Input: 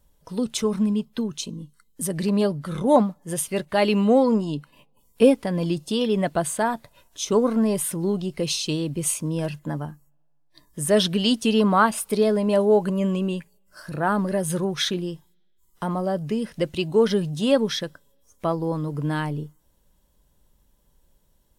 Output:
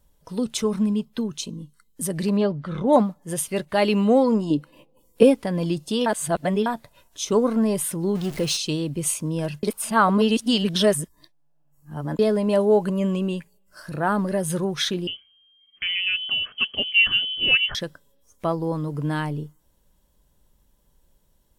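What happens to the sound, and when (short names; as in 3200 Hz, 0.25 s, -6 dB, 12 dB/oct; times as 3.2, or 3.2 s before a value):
2.37–2.93 LPF 3600 Hz
4.5–5.23 small resonant body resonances 330/500 Hz, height 13 dB
6.06–6.66 reverse
8.15–8.57 zero-crossing step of -32 dBFS
9.63–12.19 reverse
15.07–17.75 inverted band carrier 3200 Hz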